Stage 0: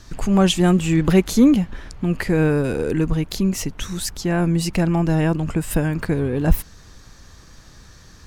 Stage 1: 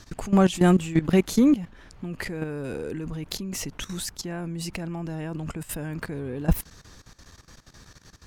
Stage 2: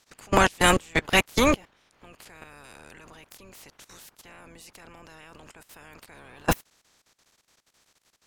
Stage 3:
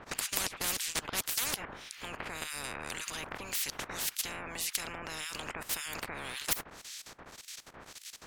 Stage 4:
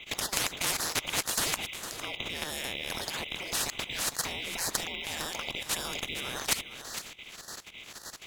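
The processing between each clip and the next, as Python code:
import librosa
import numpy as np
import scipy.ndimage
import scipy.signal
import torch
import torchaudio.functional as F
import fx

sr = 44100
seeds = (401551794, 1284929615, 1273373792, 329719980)

y1 = fx.low_shelf(x, sr, hz=64.0, db=-8.0)
y1 = fx.level_steps(y1, sr, step_db=16)
y2 = fx.spec_clip(y1, sr, under_db=28)
y2 = fx.upward_expand(y2, sr, threshold_db=-27.0, expansion=2.5)
y2 = y2 * 10.0 ** (1.0 / 20.0)
y3 = fx.harmonic_tremolo(y2, sr, hz=1.8, depth_pct=100, crossover_hz=1900.0)
y3 = fx.spectral_comp(y3, sr, ratio=10.0)
y4 = fx.band_swap(y3, sr, width_hz=2000)
y4 = y4 + 10.0 ** (-12.0 / 20.0) * np.pad(y4, (int(457 * sr / 1000.0), 0))[:len(y4)]
y4 = np.interp(np.arange(len(y4)), np.arange(len(y4))[::2], y4[::2])
y4 = y4 * 10.0 ** (4.5 / 20.0)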